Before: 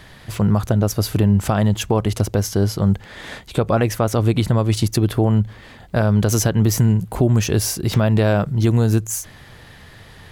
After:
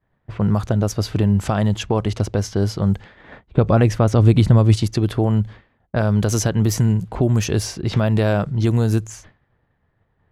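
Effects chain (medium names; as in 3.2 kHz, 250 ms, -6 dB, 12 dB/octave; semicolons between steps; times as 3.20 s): expander -29 dBFS; level-controlled noise filter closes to 1.3 kHz, open at -11 dBFS; 3.47–4.76 s: bass shelf 290 Hz +8 dB; trim -1.5 dB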